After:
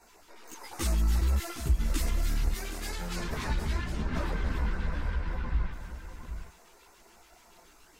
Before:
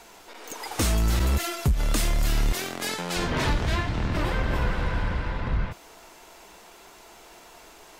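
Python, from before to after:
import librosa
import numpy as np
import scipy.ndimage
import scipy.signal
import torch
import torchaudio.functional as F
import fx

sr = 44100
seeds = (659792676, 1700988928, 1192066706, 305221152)

y = fx.filter_lfo_notch(x, sr, shape='square', hz=7.0, low_hz=620.0, high_hz=3200.0, q=1.1)
y = y + 10.0 ** (-9.0 / 20.0) * np.pad(y, (int(764 * sr / 1000.0), 0))[:len(y)]
y = fx.chorus_voices(y, sr, voices=6, hz=1.0, base_ms=15, depth_ms=3.0, mix_pct=60)
y = F.gain(torch.from_numpy(y), -5.0).numpy()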